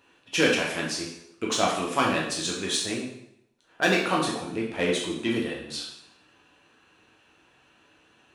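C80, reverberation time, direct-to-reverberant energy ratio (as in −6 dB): 7.0 dB, 0.75 s, −3.5 dB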